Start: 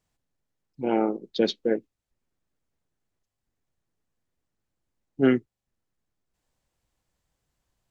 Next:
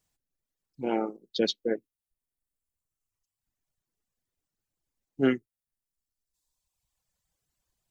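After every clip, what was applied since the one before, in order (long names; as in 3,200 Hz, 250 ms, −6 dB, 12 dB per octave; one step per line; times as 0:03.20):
reverb reduction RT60 1.6 s
high-shelf EQ 4,200 Hz +10 dB
level −3.5 dB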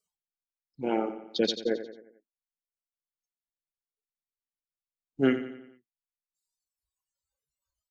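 repeating echo 89 ms, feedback 50%, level −11.5 dB
noise reduction from a noise print of the clip's start 23 dB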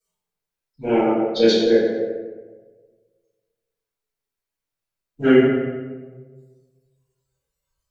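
convolution reverb RT60 1.4 s, pre-delay 3 ms, DRR −16.5 dB
level −5.5 dB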